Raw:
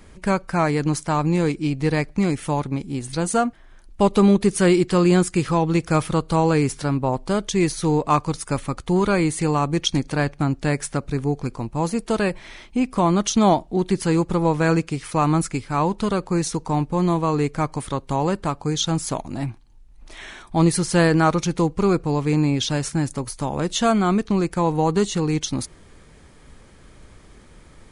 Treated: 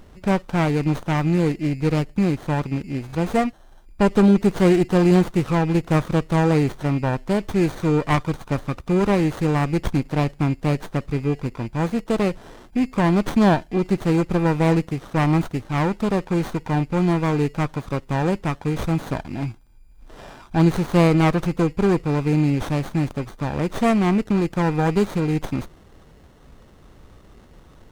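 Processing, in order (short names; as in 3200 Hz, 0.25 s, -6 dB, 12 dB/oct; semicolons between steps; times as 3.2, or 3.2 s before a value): whine 2400 Hz -37 dBFS; low-pass opened by the level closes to 2600 Hz, open at -17.5 dBFS; running maximum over 17 samples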